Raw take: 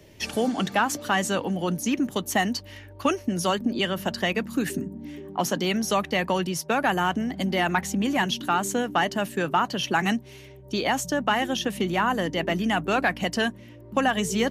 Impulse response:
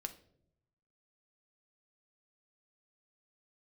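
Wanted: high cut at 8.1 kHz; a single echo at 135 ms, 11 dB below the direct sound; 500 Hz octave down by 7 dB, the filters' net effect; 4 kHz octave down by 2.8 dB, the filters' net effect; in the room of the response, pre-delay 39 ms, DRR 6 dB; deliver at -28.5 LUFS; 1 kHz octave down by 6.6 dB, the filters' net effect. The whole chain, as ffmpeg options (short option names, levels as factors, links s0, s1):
-filter_complex "[0:a]lowpass=8100,equalizer=f=500:t=o:g=-7.5,equalizer=f=1000:t=o:g=-6,equalizer=f=4000:t=o:g=-3.5,aecho=1:1:135:0.282,asplit=2[s0][s1];[1:a]atrim=start_sample=2205,adelay=39[s2];[s1][s2]afir=irnorm=-1:irlink=0,volume=0.668[s3];[s0][s3]amix=inputs=2:normalize=0,volume=0.891"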